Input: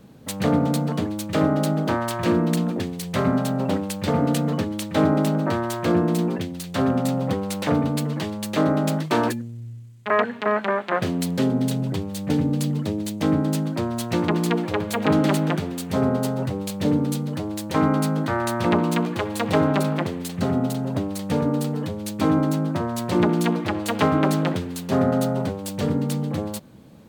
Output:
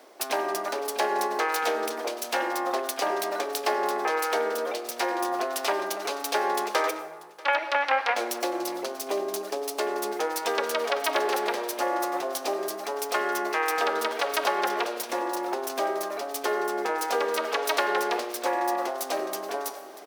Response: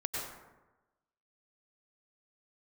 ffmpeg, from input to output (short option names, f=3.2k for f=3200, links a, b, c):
-filter_complex "[0:a]acompressor=threshold=-21dB:ratio=6,aecho=1:1:861:0.0841,asetrate=59535,aresample=44100,flanger=delay=7.5:depth=7.6:regen=83:speed=0.38:shape=sinusoidal,areverse,acompressor=mode=upward:threshold=-37dB:ratio=2.5,areverse,highpass=f=460:w=0.5412,highpass=f=460:w=1.3066,asplit=2[a][b];[1:a]atrim=start_sample=2205[c];[b][c]afir=irnorm=-1:irlink=0,volume=-13dB[d];[a][d]amix=inputs=2:normalize=0,volume=5dB"